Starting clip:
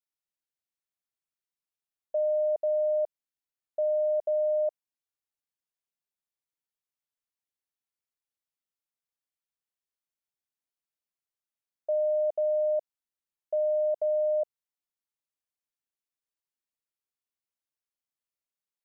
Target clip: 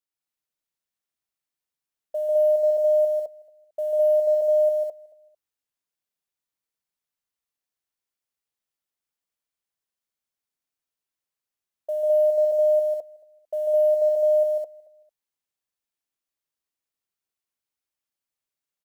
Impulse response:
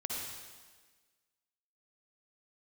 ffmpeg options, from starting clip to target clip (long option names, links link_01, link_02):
-filter_complex "[0:a]asplit=2[link_01][link_02];[link_02]aecho=0:1:224|448:0.0841|0.0236[link_03];[link_01][link_03]amix=inputs=2:normalize=0,acrusher=bits=9:mode=log:mix=0:aa=0.000001,asplit=2[link_04][link_05];[link_05]aecho=0:1:145.8|209.9:0.708|0.891[link_06];[link_04][link_06]amix=inputs=2:normalize=0"